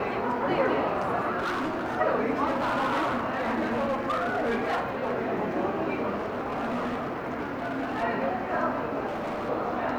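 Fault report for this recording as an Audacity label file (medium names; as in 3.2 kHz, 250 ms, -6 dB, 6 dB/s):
1.380000	1.970000	clipped -26 dBFS
2.460000	5.130000	clipped -23 dBFS
6.150000	8.040000	clipped -26 dBFS
9.060000	9.500000	clipped -28.5 dBFS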